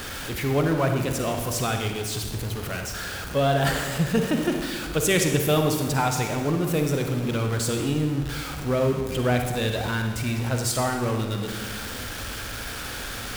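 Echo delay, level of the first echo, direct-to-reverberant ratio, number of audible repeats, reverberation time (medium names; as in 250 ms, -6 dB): no echo, no echo, 4.0 dB, no echo, 1.4 s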